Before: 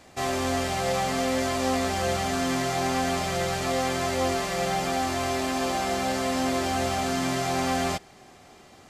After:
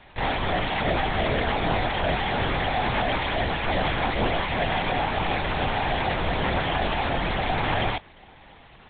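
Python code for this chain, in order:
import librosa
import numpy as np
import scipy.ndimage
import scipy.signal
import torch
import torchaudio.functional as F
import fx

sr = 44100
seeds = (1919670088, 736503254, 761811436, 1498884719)

y = fx.low_shelf(x, sr, hz=460.0, db=-10.5)
y = fx.notch_comb(y, sr, f0_hz=200.0)
y = fx.lpc_vocoder(y, sr, seeds[0], excitation='whisper', order=8)
y = y * 10.0 ** (7.0 / 20.0)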